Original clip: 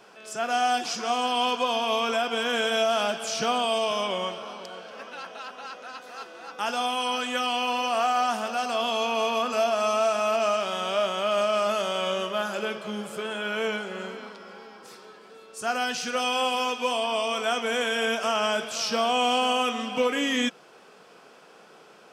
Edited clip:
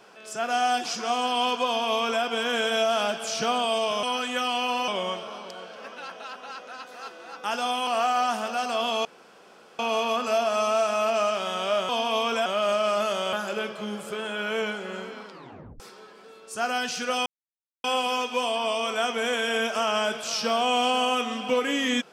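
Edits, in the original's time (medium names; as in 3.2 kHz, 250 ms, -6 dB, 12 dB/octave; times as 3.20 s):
1.66–2.23 s: copy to 11.15 s
7.02–7.87 s: move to 4.03 s
9.05 s: insert room tone 0.74 s
12.02–12.39 s: delete
14.36 s: tape stop 0.50 s
16.32 s: insert silence 0.58 s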